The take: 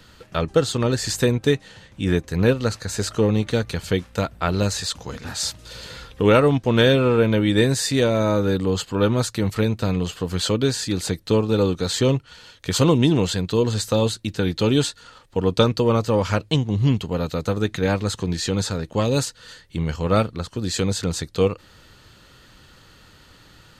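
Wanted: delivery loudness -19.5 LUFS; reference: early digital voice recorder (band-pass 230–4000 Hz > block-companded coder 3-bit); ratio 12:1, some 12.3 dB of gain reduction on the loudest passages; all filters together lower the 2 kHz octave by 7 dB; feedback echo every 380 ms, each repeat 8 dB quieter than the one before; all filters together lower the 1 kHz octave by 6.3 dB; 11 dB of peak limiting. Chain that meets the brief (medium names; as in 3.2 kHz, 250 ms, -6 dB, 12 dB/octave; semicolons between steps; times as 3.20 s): peaking EQ 1 kHz -6 dB; peaking EQ 2 kHz -7 dB; compression 12:1, threshold -25 dBFS; peak limiter -25 dBFS; band-pass 230–4000 Hz; feedback delay 380 ms, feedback 40%, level -8 dB; block-companded coder 3-bit; trim +17.5 dB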